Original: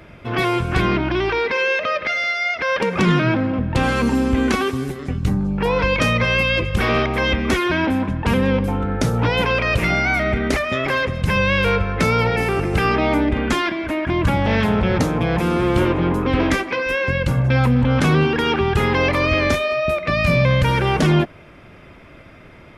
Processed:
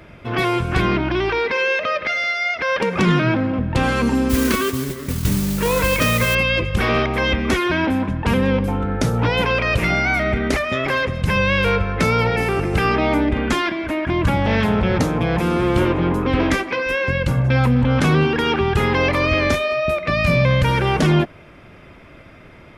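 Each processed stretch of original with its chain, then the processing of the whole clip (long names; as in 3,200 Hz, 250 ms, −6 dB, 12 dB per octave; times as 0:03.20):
0:04.29–0:06.35: Butterworth band-reject 790 Hz, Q 3.8 + noise that follows the level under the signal 11 dB
whole clip: no processing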